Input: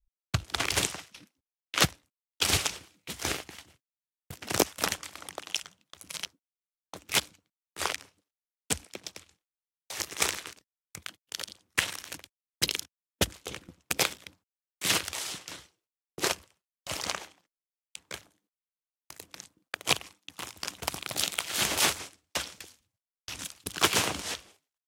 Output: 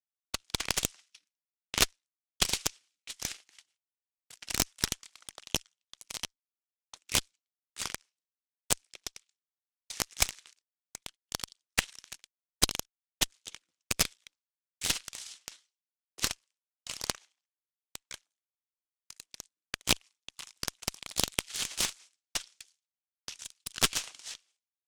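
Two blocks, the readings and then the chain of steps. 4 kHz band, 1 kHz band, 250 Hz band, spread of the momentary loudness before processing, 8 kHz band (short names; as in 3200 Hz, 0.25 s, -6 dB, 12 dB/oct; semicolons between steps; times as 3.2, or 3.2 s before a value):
-2.5 dB, -6.5 dB, -4.5 dB, 20 LU, -1.0 dB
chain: weighting filter ITU-R 468; transient shaper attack +9 dB, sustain -7 dB; added harmonics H 3 -19 dB, 6 -13 dB, 8 -28 dB, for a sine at 15 dBFS; gain -16 dB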